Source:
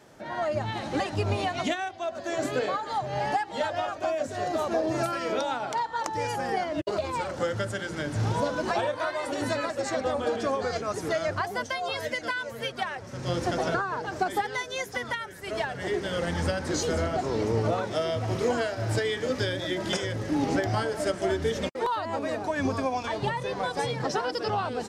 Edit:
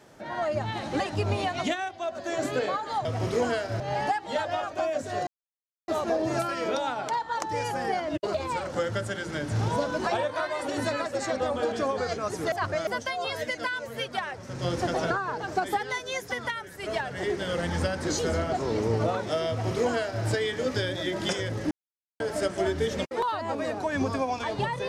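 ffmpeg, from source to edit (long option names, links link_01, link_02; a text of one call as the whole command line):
ffmpeg -i in.wav -filter_complex "[0:a]asplit=8[link_01][link_02][link_03][link_04][link_05][link_06][link_07][link_08];[link_01]atrim=end=3.052[link_09];[link_02]atrim=start=18.128:end=18.882[link_10];[link_03]atrim=start=3.048:end=4.52,asetpts=PTS-STARTPTS,afade=type=out:start_time=1.468:duration=0.004:curve=hsin,apad=pad_dur=0.61[link_11];[link_04]atrim=start=4.52:end=11.162,asetpts=PTS-STARTPTS,afade=type=in:duration=0.004:curve=hsin[link_12];[link_05]atrim=start=11.158:end=11.512,asetpts=PTS-STARTPTS,areverse[link_13];[link_06]atrim=start=11.508:end=20.35,asetpts=PTS-STARTPTS,afade=type=out:start_time=8.838:duration=0.004:curve=hsin[link_14];[link_07]atrim=start=20.35:end=20.84,asetpts=PTS-STARTPTS,volume=0[link_15];[link_08]atrim=start=20.84,asetpts=PTS-STARTPTS,afade=type=in:duration=0.004:curve=hsin[link_16];[link_09][link_10]acrossfade=duration=0.004:curve1=hsin:curve2=hsin[link_17];[link_11][link_12]concat=n=2:v=0:a=1[link_18];[link_17][link_18]acrossfade=duration=0.004:curve1=hsin:curve2=hsin[link_19];[link_19][link_13]acrossfade=duration=0.004:curve1=hsin:curve2=hsin[link_20];[link_14][link_15][link_16]concat=n=3:v=0:a=1[link_21];[link_20][link_21]acrossfade=duration=0.004:curve1=hsin:curve2=hsin" out.wav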